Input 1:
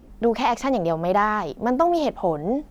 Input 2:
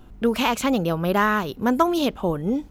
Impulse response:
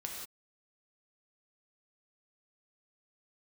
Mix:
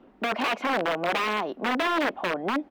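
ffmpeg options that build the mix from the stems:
-filter_complex "[0:a]highpass=frequency=69:width=0.5412,highpass=frequency=69:width=1.3066,aeval=exprs='(mod(6.68*val(0)+1,2)-1)/6.68':channel_layout=same,volume=-1dB[link_01];[1:a]acompressor=threshold=-25dB:ratio=6,adelay=2.7,volume=-6dB[link_02];[link_01][link_02]amix=inputs=2:normalize=0,acrossover=split=220 3300:gain=0.1 1 0.0708[link_03][link_04][link_05];[link_03][link_04][link_05]amix=inputs=3:normalize=0"

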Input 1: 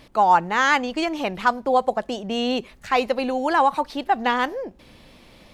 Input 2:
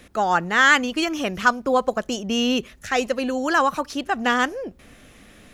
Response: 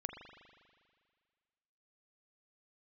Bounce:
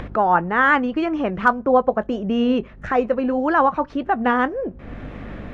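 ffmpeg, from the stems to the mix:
-filter_complex "[0:a]equalizer=frequency=670:width_type=o:width=0.77:gain=-4,flanger=delay=16:depth=7.7:speed=1.7,aeval=exprs='val(0)+0.00562*(sin(2*PI*50*n/s)+sin(2*PI*2*50*n/s)/2+sin(2*PI*3*50*n/s)/3+sin(2*PI*4*50*n/s)/4+sin(2*PI*5*50*n/s)/5)':channel_layout=same,volume=-2.5dB[link_01];[1:a]volume=1.5dB[link_02];[link_01][link_02]amix=inputs=2:normalize=0,lowpass=1400,acompressor=mode=upward:threshold=-20dB:ratio=2.5,asoftclip=type=hard:threshold=-3.5dB"

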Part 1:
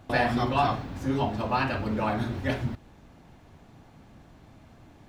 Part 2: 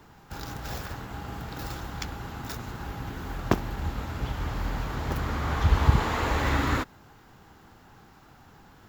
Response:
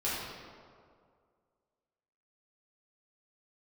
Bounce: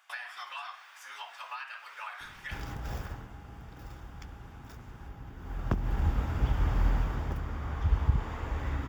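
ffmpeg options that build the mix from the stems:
-filter_complex "[0:a]highpass=frequency=1200:width=0.5412,highpass=frequency=1200:width=1.3066,highshelf=frequency=5800:gain=6,acompressor=threshold=-36dB:ratio=10,volume=0dB[link_01];[1:a]lowshelf=frequency=77:gain=10,acrossover=split=200[link_02][link_03];[link_03]acompressor=threshold=-27dB:ratio=10[link_04];[link_02][link_04]amix=inputs=2:normalize=0,adelay=2200,volume=7dB,afade=type=out:start_time=3.01:duration=0.35:silence=0.375837,afade=type=in:start_time=5.37:duration=0.6:silence=0.266073,afade=type=out:start_time=6.87:duration=0.56:silence=0.354813[link_05];[link_01][link_05]amix=inputs=2:normalize=0,highshelf=frequency=3900:gain=-6.5,bandreject=frequency=4100:width=6.6"

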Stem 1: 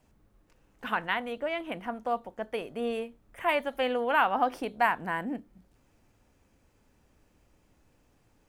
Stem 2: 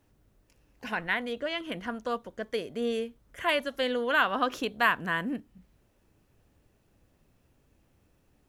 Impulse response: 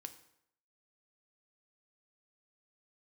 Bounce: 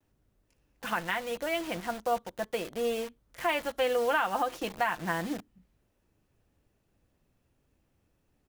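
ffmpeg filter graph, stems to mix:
-filter_complex "[0:a]acrusher=bits=6:mix=0:aa=0.000001,volume=0dB[link_01];[1:a]adelay=5.8,volume=-6dB[link_02];[link_01][link_02]amix=inputs=2:normalize=0,alimiter=limit=-17.5dB:level=0:latency=1:release=216"

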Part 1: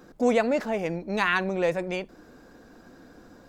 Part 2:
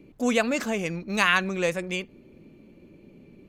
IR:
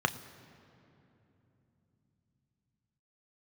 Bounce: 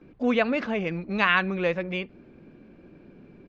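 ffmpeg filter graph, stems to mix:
-filter_complex "[0:a]volume=-10dB[link_01];[1:a]lowpass=frequency=5200:width=0.5412,lowpass=frequency=5200:width=1.3066,volume=-1,adelay=13,volume=0.5dB,asplit=2[link_02][link_03];[link_03]apad=whole_len=153617[link_04];[link_01][link_04]sidechaincompress=threshold=-32dB:ratio=8:attack=16:release=165[link_05];[link_05][link_02]amix=inputs=2:normalize=0,lowpass=3100"

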